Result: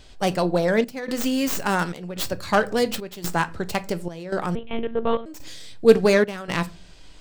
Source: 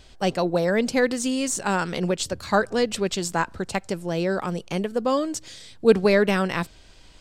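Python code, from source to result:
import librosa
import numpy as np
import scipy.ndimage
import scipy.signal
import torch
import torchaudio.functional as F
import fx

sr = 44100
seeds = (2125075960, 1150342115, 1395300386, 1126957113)

y = fx.tracing_dist(x, sr, depth_ms=0.13)
y = fx.room_shoebox(y, sr, seeds[0], volume_m3=190.0, walls='furnished', distance_m=0.39)
y = fx.step_gate(y, sr, bpm=125, pattern='xxxxxxx..', floor_db=-12.0, edge_ms=4.5)
y = fx.lpc_monotone(y, sr, seeds[1], pitch_hz=230.0, order=10, at=(4.55, 5.26))
y = y * 10.0 ** (1.0 / 20.0)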